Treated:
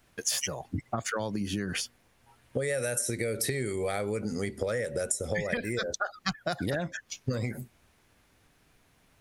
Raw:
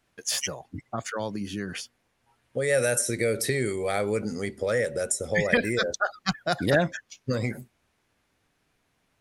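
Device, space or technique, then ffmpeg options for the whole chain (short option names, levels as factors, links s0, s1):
ASMR close-microphone chain: -af "lowshelf=f=110:g=6,acompressor=threshold=0.0224:ratio=10,highshelf=f=12000:g=7.5,volume=1.88"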